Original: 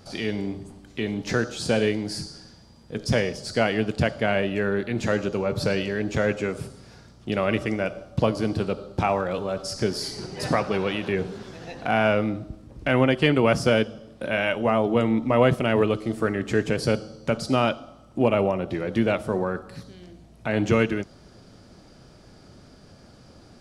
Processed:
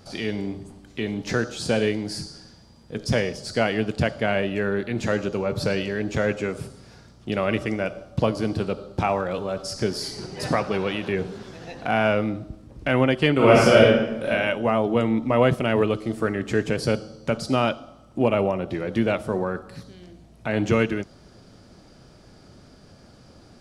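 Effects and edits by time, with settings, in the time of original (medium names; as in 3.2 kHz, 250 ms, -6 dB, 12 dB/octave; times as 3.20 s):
13.35–14.30 s: reverb throw, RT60 0.99 s, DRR -5.5 dB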